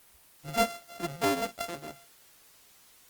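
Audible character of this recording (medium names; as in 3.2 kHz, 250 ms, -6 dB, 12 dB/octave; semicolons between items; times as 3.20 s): a buzz of ramps at a fixed pitch in blocks of 64 samples; tremolo saw down 0.97 Hz, depth 55%; a quantiser's noise floor 10-bit, dither triangular; Opus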